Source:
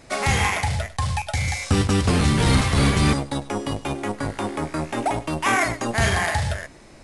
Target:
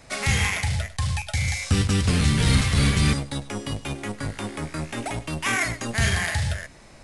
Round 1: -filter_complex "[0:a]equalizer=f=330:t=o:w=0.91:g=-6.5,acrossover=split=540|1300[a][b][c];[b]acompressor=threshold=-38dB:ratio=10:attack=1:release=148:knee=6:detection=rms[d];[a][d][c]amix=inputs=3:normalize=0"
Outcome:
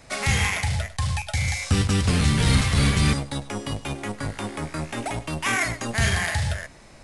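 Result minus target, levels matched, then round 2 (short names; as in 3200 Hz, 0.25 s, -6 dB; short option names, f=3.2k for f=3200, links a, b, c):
compressor: peak gain reduction -7.5 dB
-filter_complex "[0:a]equalizer=f=330:t=o:w=0.91:g=-6.5,acrossover=split=540|1300[a][b][c];[b]acompressor=threshold=-46.5dB:ratio=10:attack=1:release=148:knee=6:detection=rms[d];[a][d][c]amix=inputs=3:normalize=0"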